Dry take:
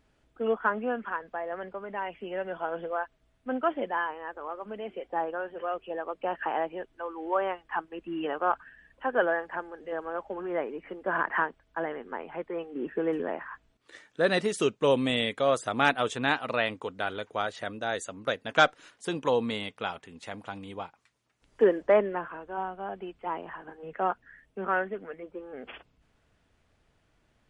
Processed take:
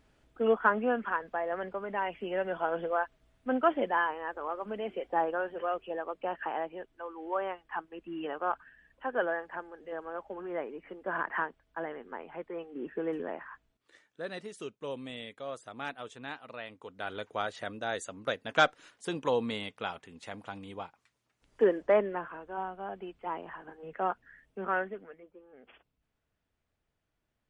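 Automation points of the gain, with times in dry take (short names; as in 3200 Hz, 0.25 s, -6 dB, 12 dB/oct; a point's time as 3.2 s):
5.41 s +1.5 dB
6.59 s -5 dB
13.48 s -5 dB
14.3 s -15 dB
16.68 s -15 dB
17.19 s -3 dB
24.83 s -3 dB
25.35 s -14 dB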